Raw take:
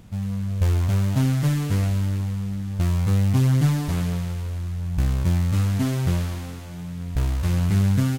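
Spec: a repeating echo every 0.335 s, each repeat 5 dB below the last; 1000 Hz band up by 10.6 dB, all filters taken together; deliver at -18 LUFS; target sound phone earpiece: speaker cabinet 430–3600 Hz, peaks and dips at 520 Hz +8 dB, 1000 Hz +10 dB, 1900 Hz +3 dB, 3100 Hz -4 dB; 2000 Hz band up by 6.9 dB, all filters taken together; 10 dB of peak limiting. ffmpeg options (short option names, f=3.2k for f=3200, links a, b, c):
-af "equalizer=f=1k:t=o:g=4.5,equalizer=f=2k:t=o:g=5,alimiter=limit=-18.5dB:level=0:latency=1,highpass=430,equalizer=f=520:t=q:w=4:g=8,equalizer=f=1k:t=q:w=4:g=10,equalizer=f=1.9k:t=q:w=4:g=3,equalizer=f=3.1k:t=q:w=4:g=-4,lowpass=f=3.6k:w=0.5412,lowpass=f=3.6k:w=1.3066,aecho=1:1:335|670|1005|1340|1675|2010|2345:0.562|0.315|0.176|0.0988|0.0553|0.031|0.0173,volume=15.5dB"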